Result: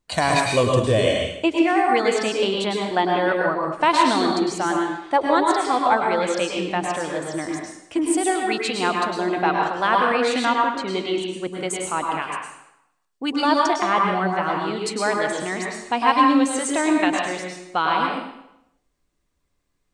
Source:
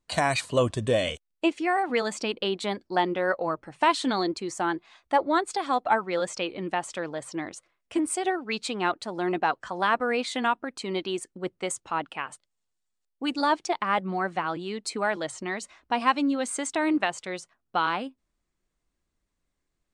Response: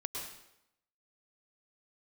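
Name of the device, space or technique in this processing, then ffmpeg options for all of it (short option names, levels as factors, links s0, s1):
bathroom: -filter_complex "[1:a]atrim=start_sample=2205[s0];[0:a][s0]afir=irnorm=-1:irlink=0,asettb=1/sr,asplit=3[s1][s2][s3];[s1]atrim=end=10.454[s4];[s2]atrim=start=10.45:end=11.53,asetpts=PTS-STARTPTS,afade=t=in:d=0.004:c=qsin,afade=t=out:st=1.076:d=0.004:c=qsin,lowpass=5800[s5];[s3]atrim=start=11.526[s6];[s4][s5]acrossfade=d=0.004:c1=hsin:c2=qsin[s7];[s7][s6]acrossfade=d=0.004:c1=qsin:c2=hsin,volume=1.88"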